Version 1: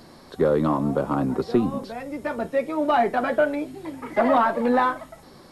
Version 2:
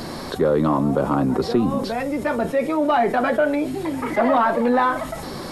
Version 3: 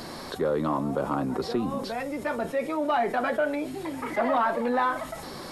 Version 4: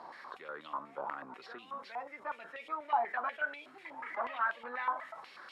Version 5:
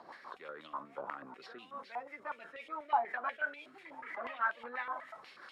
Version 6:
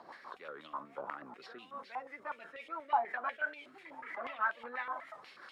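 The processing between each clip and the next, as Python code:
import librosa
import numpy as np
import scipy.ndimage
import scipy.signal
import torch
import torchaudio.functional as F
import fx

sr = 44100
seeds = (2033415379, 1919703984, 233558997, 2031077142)

y1 = fx.env_flatten(x, sr, amount_pct=50)
y2 = fx.low_shelf(y1, sr, hz=420.0, db=-5.5)
y2 = y2 * librosa.db_to_amplitude(-5.0)
y3 = fx.filter_held_bandpass(y2, sr, hz=8.2, low_hz=920.0, high_hz=3000.0)
y4 = fx.rotary(y3, sr, hz=6.0)
y4 = y4 * librosa.db_to_amplitude(1.0)
y5 = fx.record_warp(y4, sr, rpm=78.0, depth_cents=100.0)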